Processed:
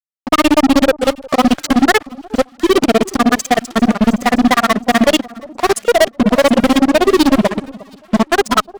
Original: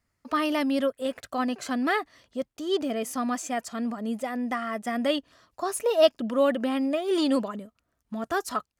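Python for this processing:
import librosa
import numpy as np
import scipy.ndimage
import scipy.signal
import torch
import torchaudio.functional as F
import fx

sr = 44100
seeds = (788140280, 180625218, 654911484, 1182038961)

p1 = scipy.signal.sosfilt(scipy.signal.butter(4, 8000.0, 'lowpass', fs=sr, output='sos'), x)
p2 = fx.level_steps(p1, sr, step_db=17)
p3 = p1 + F.gain(torch.from_numpy(p2), -0.5).numpy()
p4 = fx.granulator(p3, sr, seeds[0], grain_ms=49.0, per_s=16.0, spray_ms=18.0, spread_st=0)
p5 = fx.fuzz(p4, sr, gain_db=35.0, gate_db=-43.0)
p6 = p5 + fx.echo_alternate(p5, sr, ms=358, hz=970.0, feedback_pct=58, wet_db=-13.0, dry=0)
p7 = fx.upward_expand(p6, sr, threshold_db=-36.0, expansion=1.5)
y = F.gain(torch.from_numpy(p7), 7.0).numpy()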